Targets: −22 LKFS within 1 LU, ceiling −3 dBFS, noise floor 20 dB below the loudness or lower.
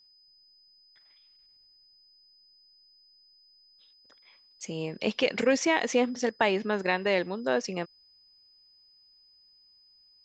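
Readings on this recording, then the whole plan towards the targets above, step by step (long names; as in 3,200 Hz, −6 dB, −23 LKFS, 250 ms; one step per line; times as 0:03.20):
interfering tone 5,000 Hz; level of the tone −58 dBFS; integrated loudness −28.0 LKFS; sample peak −9.5 dBFS; target loudness −22.0 LKFS
→ notch filter 5,000 Hz, Q 30
level +6 dB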